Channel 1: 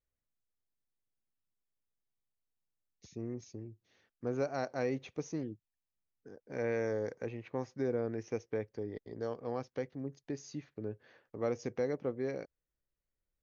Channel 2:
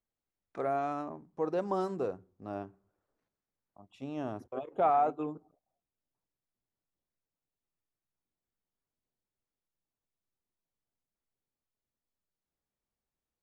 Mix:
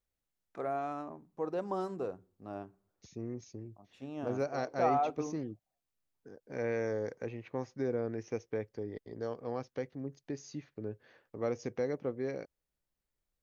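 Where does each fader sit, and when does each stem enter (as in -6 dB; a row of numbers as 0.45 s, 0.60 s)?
0.0 dB, -3.5 dB; 0.00 s, 0.00 s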